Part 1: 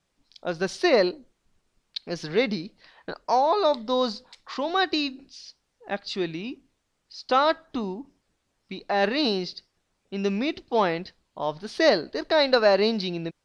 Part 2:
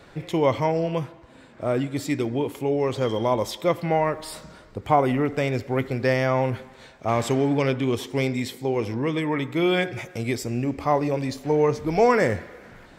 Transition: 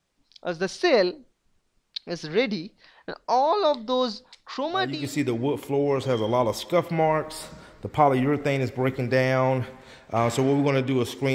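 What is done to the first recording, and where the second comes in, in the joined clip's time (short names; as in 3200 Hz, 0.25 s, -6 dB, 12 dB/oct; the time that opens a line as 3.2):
part 1
4.91 switch to part 2 from 1.83 s, crossfade 0.46 s linear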